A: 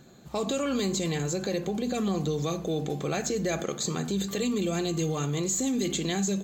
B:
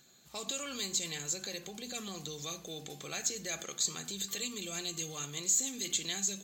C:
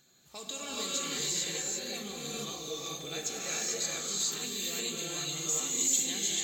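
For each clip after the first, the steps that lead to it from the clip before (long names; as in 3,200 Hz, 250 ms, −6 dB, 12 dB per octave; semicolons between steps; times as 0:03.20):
tilt shelving filter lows −10 dB, about 1,500 Hz; level −8 dB
reverb whose tail is shaped and stops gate 470 ms rising, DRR −5.5 dB; level −3 dB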